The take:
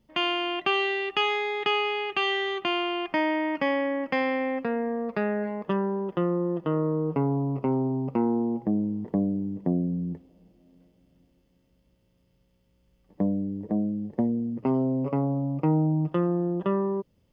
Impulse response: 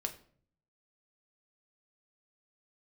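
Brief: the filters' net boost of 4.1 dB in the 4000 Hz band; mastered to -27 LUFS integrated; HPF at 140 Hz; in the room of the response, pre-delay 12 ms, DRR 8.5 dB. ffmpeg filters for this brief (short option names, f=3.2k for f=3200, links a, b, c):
-filter_complex "[0:a]highpass=140,equalizer=f=4k:t=o:g=6.5,asplit=2[a][b];[1:a]atrim=start_sample=2205,adelay=12[c];[b][c]afir=irnorm=-1:irlink=0,volume=-9dB[d];[a][d]amix=inputs=2:normalize=0,volume=-1dB"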